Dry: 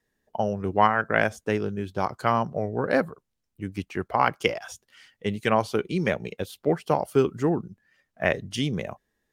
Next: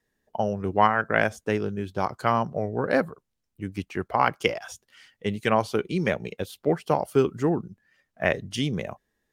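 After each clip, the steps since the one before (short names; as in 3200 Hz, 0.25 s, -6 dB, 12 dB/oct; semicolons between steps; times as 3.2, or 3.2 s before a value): nothing audible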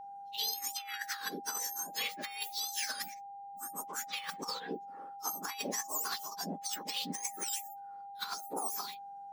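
spectrum mirrored in octaves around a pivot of 1600 Hz; negative-ratio compressor -31 dBFS, ratio -0.5; whine 800 Hz -39 dBFS; gain -5.5 dB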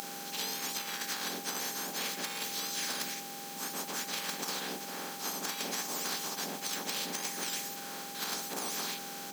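per-bin compression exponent 0.2; gain -8.5 dB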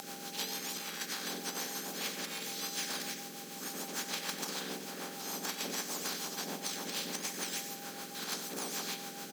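rotary speaker horn 6.7 Hz; on a send: echo 93 ms -10.5 dB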